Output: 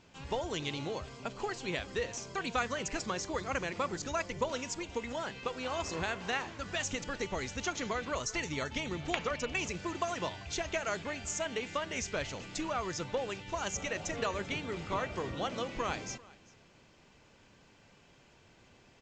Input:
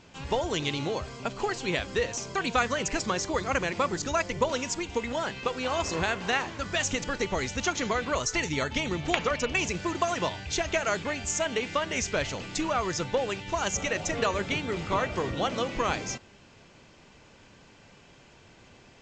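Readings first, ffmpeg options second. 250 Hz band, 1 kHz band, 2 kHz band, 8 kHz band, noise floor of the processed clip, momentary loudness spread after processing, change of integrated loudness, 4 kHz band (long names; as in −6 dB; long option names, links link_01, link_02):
−7.0 dB, −7.0 dB, −7.0 dB, −7.0 dB, −62 dBFS, 4 LU, −7.0 dB, −7.0 dB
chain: -af "aecho=1:1:391:0.075,volume=-7dB"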